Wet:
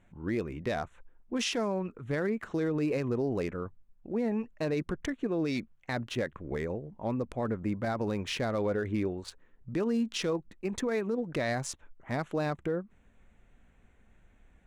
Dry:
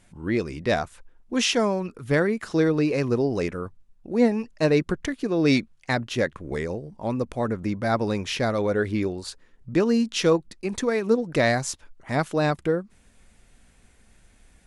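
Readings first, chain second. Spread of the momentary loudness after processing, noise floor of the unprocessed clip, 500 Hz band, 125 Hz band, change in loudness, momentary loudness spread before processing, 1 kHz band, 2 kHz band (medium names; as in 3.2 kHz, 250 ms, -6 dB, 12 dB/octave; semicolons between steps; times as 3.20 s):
7 LU, -58 dBFS, -8.5 dB, -7.5 dB, -8.0 dB, 9 LU, -8.5 dB, -9.5 dB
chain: local Wiener filter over 9 samples; peak limiter -18 dBFS, peak gain reduction 10 dB; trim -4.5 dB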